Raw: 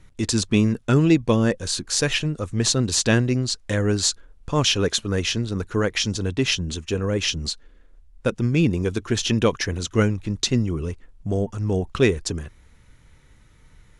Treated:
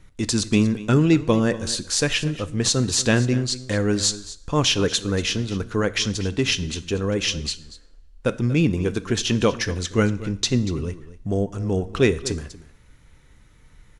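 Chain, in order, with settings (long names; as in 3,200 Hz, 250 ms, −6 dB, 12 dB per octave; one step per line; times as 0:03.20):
single-tap delay 237 ms −16.5 dB
coupled-rooms reverb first 0.59 s, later 1.8 s, from −26 dB, DRR 13.5 dB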